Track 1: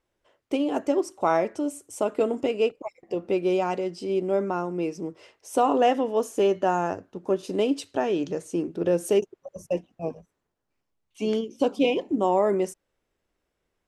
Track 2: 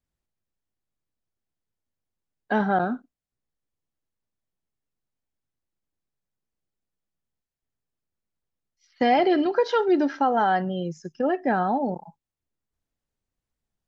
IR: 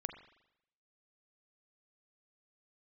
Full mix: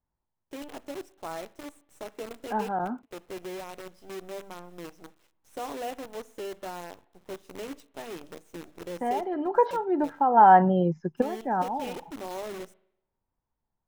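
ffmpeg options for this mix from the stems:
-filter_complex "[0:a]bandreject=f=50:t=h:w=6,bandreject=f=100:t=h:w=6,bandreject=f=150:t=h:w=6,bandreject=f=200:t=h:w=6,bandreject=f=250:t=h:w=6,bandreject=f=300:t=h:w=6,acrusher=bits=5:dc=4:mix=0:aa=0.000001,volume=0.141,asplit=3[s0][s1][s2];[s1]volume=0.316[s3];[1:a]lowpass=1500,equalizer=f=920:w=3.6:g=11.5,dynaudnorm=f=240:g=11:m=3.35,volume=1[s4];[s2]apad=whole_len=611961[s5];[s4][s5]sidechaincompress=threshold=0.00158:ratio=6:attack=16:release=416[s6];[2:a]atrim=start_sample=2205[s7];[s3][s7]afir=irnorm=-1:irlink=0[s8];[s0][s6][s8]amix=inputs=3:normalize=0,bandreject=f=4600:w=19"

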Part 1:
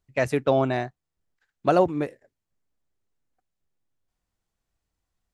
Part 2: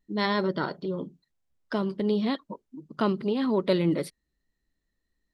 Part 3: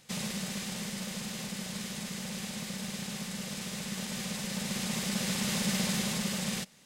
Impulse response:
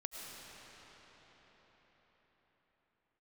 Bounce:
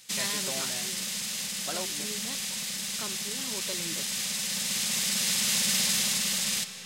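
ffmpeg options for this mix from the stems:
-filter_complex "[0:a]volume=0.211[s0];[1:a]volume=0.299[s1];[2:a]volume=0.841,asplit=2[s2][s3];[s3]volume=0.562[s4];[3:a]atrim=start_sample=2205[s5];[s4][s5]afir=irnorm=-1:irlink=0[s6];[s0][s1][s2][s6]amix=inputs=4:normalize=0,tiltshelf=f=1500:g=-9"

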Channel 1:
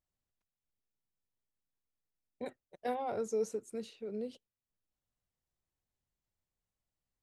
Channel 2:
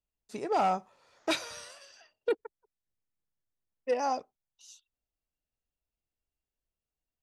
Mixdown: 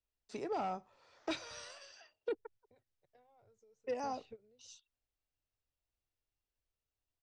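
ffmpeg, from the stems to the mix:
-filter_complex "[0:a]lowshelf=f=150:t=q:w=3:g=10.5,acompressor=threshold=0.00501:ratio=6,adelay=300,volume=1.06[s0];[1:a]equalizer=f=190:w=2.7:g=-6.5,bandreject=f=6700:w=13,volume=0.841,asplit=2[s1][s2];[s2]apad=whole_len=331688[s3];[s0][s3]sidechaingate=range=0.0891:threshold=0.00178:ratio=16:detection=peak[s4];[s4][s1]amix=inputs=2:normalize=0,lowpass=f=7200:w=0.5412,lowpass=f=7200:w=1.3066,acrossover=split=290[s5][s6];[s6]acompressor=threshold=0.00631:ratio=2[s7];[s5][s7]amix=inputs=2:normalize=0"

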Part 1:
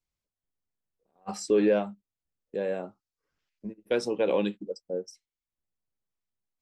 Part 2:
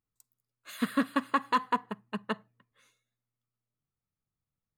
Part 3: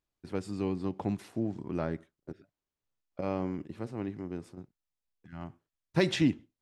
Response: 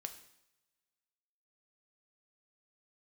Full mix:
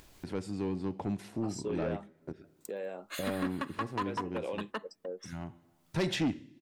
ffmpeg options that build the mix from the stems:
-filter_complex "[0:a]highpass=f=340:p=1,adelay=150,volume=0.447[s0];[1:a]highpass=f=250:w=0.5412,highpass=f=250:w=1.3066,adelay=2450,volume=1.19[s1];[2:a]bandreject=f=1200:w=11,volume=0.708,asplit=2[s2][s3];[s3]volume=0.631[s4];[s0][s1]amix=inputs=2:normalize=0,acompressor=threshold=0.0224:ratio=2.5,volume=1[s5];[3:a]atrim=start_sample=2205[s6];[s4][s6]afir=irnorm=-1:irlink=0[s7];[s2][s5][s7]amix=inputs=3:normalize=0,acompressor=mode=upward:threshold=0.02:ratio=2.5,asoftclip=type=tanh:threshold=0.0596"

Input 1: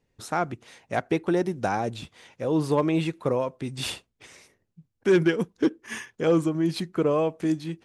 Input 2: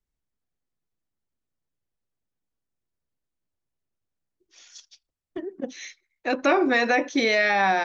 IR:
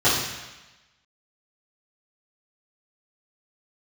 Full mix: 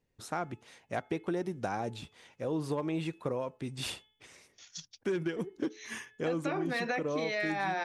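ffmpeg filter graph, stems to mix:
-filter_complex "[0:a]bandreject=f=429.9:t=h:w=4,bandreject=f=859.8:t=h:w=4,bandreject=f=1289.7:t=h:w=4,bandreject=f=1719.6:t=h:w=4,bandreject=f=2149.5:t=h:w=4,bandreject=f=2579.4:t=h:w=4,bandreject=f=3009.3:t=h:w=4,bandreject=f=3439.2:t=h:w=4,volume=0.501,asplit=2[s0][s1];[1:a]agate=range=0.0631:threshold=0.00316:ratio=16:detection=peak,volume=1.26[s2];[s1]apad=whole_len=345952[s3];[s2][s3]sidechaincompress=threshold=0.0141:ratio=6:attack=16:release=815[s4];[s0][s4]amix=inputs=2:normalize=0,acompressor=threshold=0.0355:ratio=6"

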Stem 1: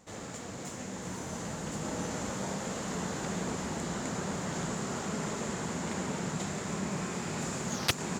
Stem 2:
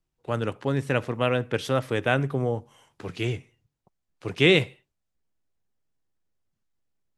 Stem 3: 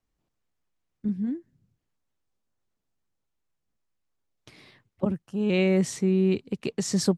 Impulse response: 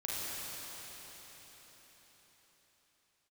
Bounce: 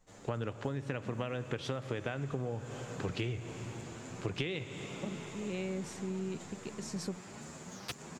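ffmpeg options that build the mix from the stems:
-filter_complex "[0:a]asplit=2[s0][s1];[s1]adelay=8.7,afreqshift=1.7[s2];[s0][s2]amix=inputs=2:normalize=1,volume=0.335[s3];[1:a]acompressor=threshold=0.0708:ratio=6,lowpass=6100,lowshelf=f=71:g=8.5,volume=1.12,asplit=2[s4][s5];[s5]volume=0.133[s6];[2:a]volume=0.2[s7];[3:a]atrim=start_sample=2205[s8];[s6][s8]afir=irnorm=-1:irlink=0[s9];[s3][s4][s7][s9]amix=inputs=4:normalize=0,acompressor=threshold=0.0251:ratio=12"

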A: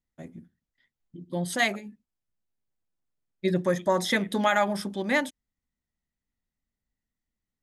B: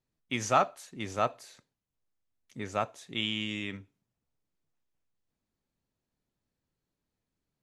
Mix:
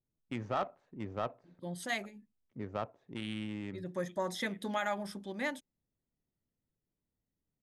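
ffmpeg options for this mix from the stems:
-filter_complex "[0:a]adelay=300,volume=0.282[s0];[1:a]alimiter=limit=0.106:level=0:latency=1:release=38,adynamicsmooth=sensitivity=1.5:basefreq=780,volume=0.794,asplit=2[s1][s2];[s2]apad=whole_len=349625[s3];[s0][s3]sidechaincompress=threshold=0.00355:ratio=5:attack=6.5:release=281[s4];[s4][s1]amix=inputs=2:normalize=0"

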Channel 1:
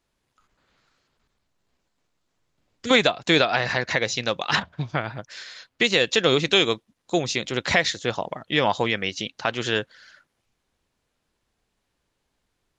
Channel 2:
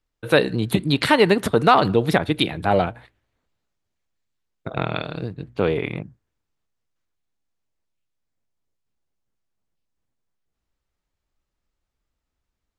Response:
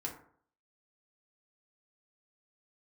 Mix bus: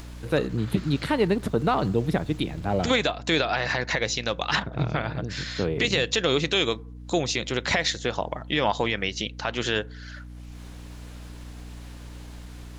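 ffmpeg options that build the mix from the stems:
-filter_complex "[0:a]acompressor=mode=upward:threshold=0.0447:ratio=2.5,alimiter=limit=0.266:level=0:latency=1:release=78,aeval=exprs='val(0)+0.01*(sin(2*PI*60*n/s)+sin(2*PI*2*60*n/s)/2+sin(2*PI*3*60*n/s)/3+sin(2*PI*4*60*n/s)/4+sin(2*PI*5*60*n/s)/5)':c=same,volume=0.944,asplit=2[s0][s1];[s1]volume=0.119[s2];[1:a]lowshelf=f=430:g=9.5,volume=0.266[s3];[2:a]atrim=start_sample=2205[s4];[s2][s4]afir=irnorm=-1:irlink=0[s5];[s0][s3][s5]amix=inputs=3:normalize=0"

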